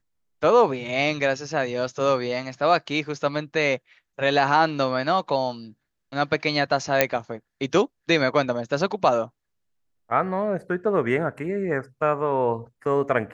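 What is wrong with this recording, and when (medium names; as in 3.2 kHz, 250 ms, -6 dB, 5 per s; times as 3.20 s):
7.01 s: pop -2 dBFS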